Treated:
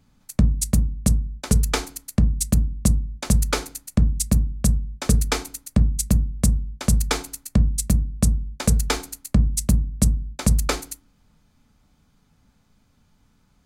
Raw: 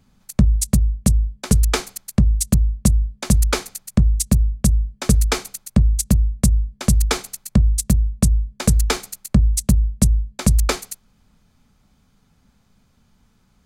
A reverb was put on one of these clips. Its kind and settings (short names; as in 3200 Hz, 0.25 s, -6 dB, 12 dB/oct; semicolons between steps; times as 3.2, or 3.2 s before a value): FDN reverb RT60 0.35 s, low-frequency decay 1.55×, high-frequency decay 0.4×, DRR 10.5 dB; gain -2.5 dB